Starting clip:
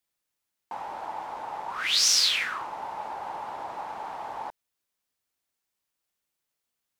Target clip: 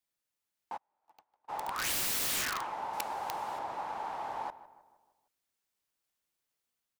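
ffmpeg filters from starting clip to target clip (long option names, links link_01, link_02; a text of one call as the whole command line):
ffmpeg -i in.wav -filter_complex "[0:a]dynaudnorm=framelen=480:gausssize=3:maxgain=3dB,asplit=2[link_01][link_02];[link_02]adelay=155,lowpass=frequency=1900:poles=1,volume=-15dB,asplit=2[link_03][link_04];[link_04]adelay=155,lowpass=frequency=1900:poles=1,volume=0.52,asplit=2[link_05][link_06];[link_06]adelay=155,lowpass=frequency=1900:poles=1,volume=0.52,asplit=2[link_07][link_08];[link_08]adelay=155,lowpass=frequency=1900:poles=1,volume=0.52,asplit=2[link_09][link_10];[link_10]adelay=155,lowpass=frequency=1900:poles=1,volume=0.52[link_11];[link_03][link_05][link_07][link_09][link_11]amix=inputs=5:normalize=0[link_12];[link_01][link_12]amix=inputs=2:normalize=0,aeval=exprs='(mod(13.3*val(0)+1,2)-1)/13.3':channel_layout=same,asplit=3[link_13][link_14][link_15];[link_13]afade=type=out:start_time=0.76:duration=0.02[link_16];[link_14]agate=range=-44dB:threshold=-27dB:ratio=16:detection=peak,afade=type=in:start_time=0.76:duration=0.02,afade=type=out:start_time=1.48:duration=0.02[link_17];[link_15]afade=type=in:start_time=1.48:duration=0.02[link_18];[link_16][link_17][link_18]amix=inputs=3:normalize=0,asettb=1/sr,asplit=3[link_19][link_20][link_21];[link_19]atrim=end=2.934[link_22];[link_20]atrim=start=2.93:end=3.59,asetpts=PTS-STARTPTS,afade=type=in:duration=0.004:curve=qsin,afade=type=out:start_time=0.656:duration=0.004:curve=qsin,highshelf=frequency=5100:gain=10.5[link_23];[link_21]atrim=start=3.586[link_24];[link_22][link_23]acrossfade=duration=0.004:curve1=hsin:curve2=qsin[link_25];[link_25][link_24]acrossfade=duration=0.004:curve1=qsin:curve2=hsin,volume=-5dB" out.wav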